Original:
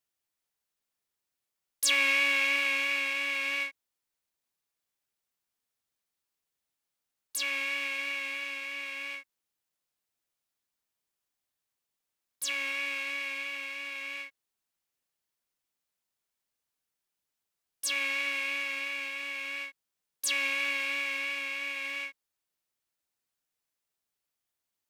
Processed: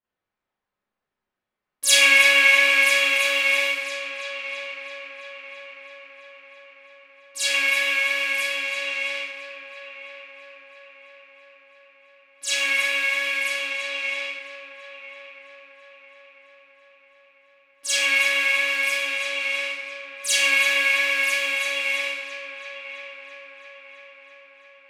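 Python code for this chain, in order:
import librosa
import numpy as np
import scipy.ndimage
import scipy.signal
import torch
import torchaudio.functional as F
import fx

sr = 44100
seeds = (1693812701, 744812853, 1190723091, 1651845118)

y = fx.echo_heads(x, sr, ms=332, heads='first and third', feedback_pct=65, wet_db=-13.5)
y = fx.env_lowpass(y, sr, base_hz=1800.0, full_db=-31.0)
y = fx.rev_schroeder(y, sr, rt60_s=0.61, comb_ms=30, drr_db=-10.0)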